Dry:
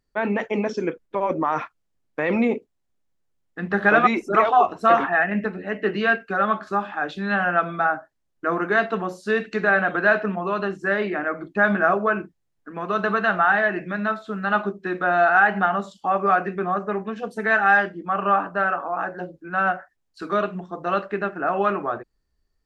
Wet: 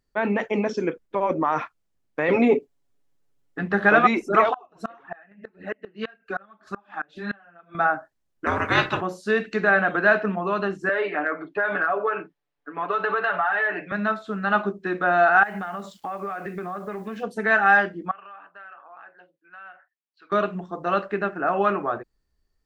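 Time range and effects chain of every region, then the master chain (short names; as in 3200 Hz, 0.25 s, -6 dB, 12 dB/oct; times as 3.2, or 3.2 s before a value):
2.28–3.63 bell 370 Hz +4.5 dB 0.95 oct + comb 7.1 ms, depth 89%
4.53–7.75 flange 1.8 Hz, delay 0.5 ms, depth 5.8 ms, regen +5% + flipped gate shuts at -17 dBFS, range -28 dB
8.45–9 spectral limiter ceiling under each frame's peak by 22 dB + frequency shift -78 Hz
10.89–13.92 three-band isolator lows -15 dB, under 320 Hz, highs -21 dB, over 4300 Hz + comb 6.9 ms, depth 98% + compressor, threshold -19 dBFS
15.43–17.23 bell 2100 Hz +5.5 dB 0.22 oct + compressor 10:1, threshold -27 dBFS + requantised 10-bit, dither none
18.11–20.32 LPF 3100 Hz 24 dB/oct + differentiator + compressor 4:1, threshold -40 dBFS
whole clip: dry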